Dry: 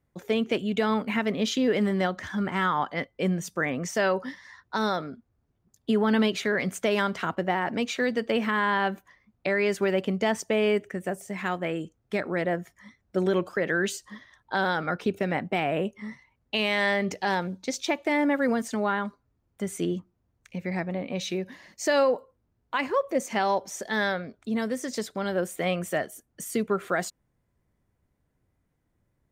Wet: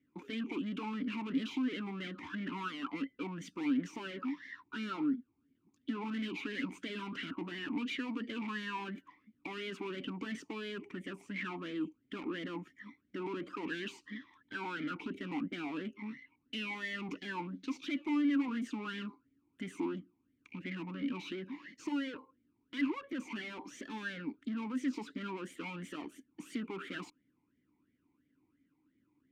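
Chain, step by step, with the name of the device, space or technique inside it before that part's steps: talk box (tube stage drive 38 dB, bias 0.4; vowel sweep i-u 2.9 Hz); gain +14 dB

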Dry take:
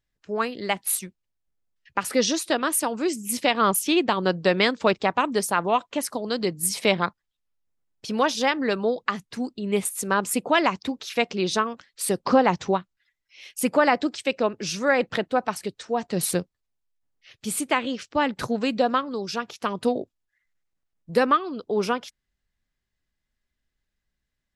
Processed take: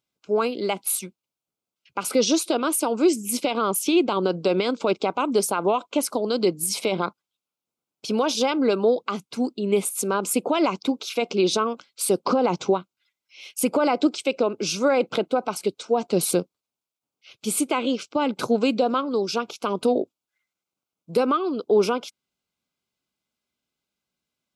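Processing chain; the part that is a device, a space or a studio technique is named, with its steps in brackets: PA system with an anti-feedback notch (HPF 190 Hz 12 dB/oct; Butterworth band-stop 1800 Hz, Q 3.1; limiter -17 dBFS, peak gain reduction 12 dB); dynamic EQ 380 Hz, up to +5 dB, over -40 dBFS, Q 1.1; gain +3 dB

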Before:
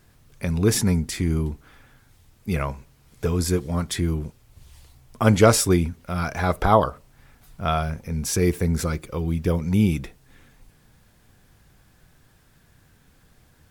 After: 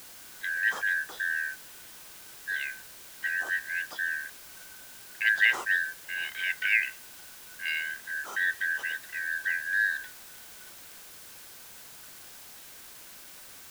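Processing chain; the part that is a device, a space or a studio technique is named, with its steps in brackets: split-band scrambled radio (four-band scrambler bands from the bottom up 4123; BPF 350–3300 Hz; white noise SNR 15 dB); gain -8 dB

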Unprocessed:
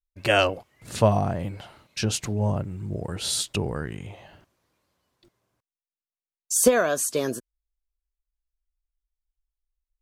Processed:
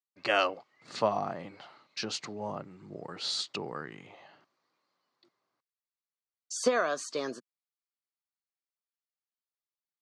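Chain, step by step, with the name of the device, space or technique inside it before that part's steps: television speaker (speaker cabinet 170–6600 Hz, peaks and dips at 200 Hz -5 dB, 810 Hz +4 dB, 1200 Hz +9 dB, 2000 Hz +5 dB, 4400 Hz +8 dB); gain -8.5 dB

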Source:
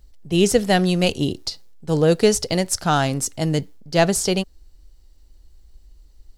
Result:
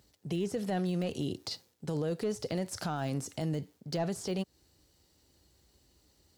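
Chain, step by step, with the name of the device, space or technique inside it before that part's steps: podcast mastering chain (HPF 93 Hz 24 dB/oct; de-esser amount 75%; compressor 3:1, threshold -28 dBFS, peak gain reduction 12 dB; limiter -24 dBFS, peak gain reduction 7.5 dB; MP3 128 kbps 44100 Hz)

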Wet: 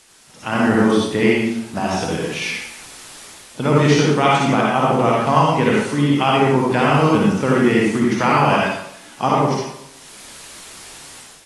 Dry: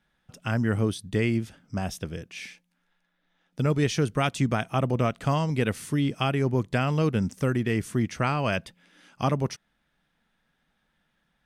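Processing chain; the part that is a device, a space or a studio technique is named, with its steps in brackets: filmed off a television (BPF 190–7000 Hz; bell 880 Hz +9 dB 0.51 oct; reverb RT60 0.75 s, pre-delay 50 ms, DRR -4 dB; white noise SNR 24 dB; AGC gain up to 12 dB; gain -1.5 dB; AAC 32 kbps 24000 Hz)

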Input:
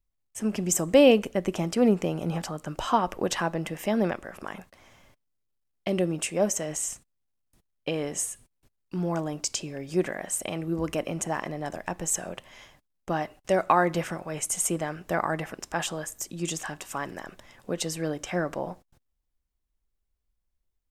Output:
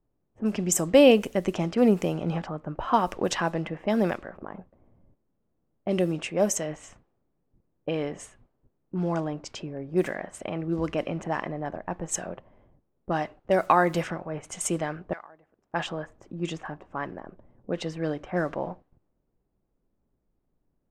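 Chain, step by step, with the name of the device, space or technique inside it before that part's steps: 15.13–15.74 differentiator; cassette deck with a dynamic noise filter (white noise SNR 32 dB; low-pass opened by the level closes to 310 Hz, open at -21.5 dBFS); gain +1 dB

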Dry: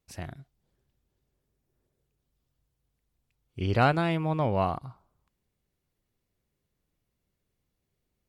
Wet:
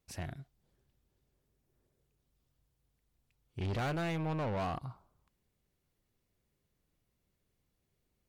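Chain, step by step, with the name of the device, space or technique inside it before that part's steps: saturation between pre-emphasis and de-emphasis (high shelf 4000 Hz +7 dB; soft clip -32 dBFS, distortion -4 dB; high shelf 4000 Hz -7 dB)

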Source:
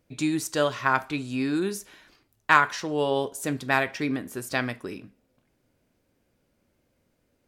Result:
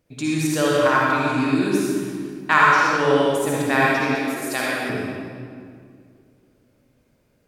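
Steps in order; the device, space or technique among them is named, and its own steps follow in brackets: stairwell (reverb RT60 2.2 s, pre-delay 50 ms, DRR -5.5 dB); 4.15–4.9 tone controls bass -13 dB, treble +3 dB

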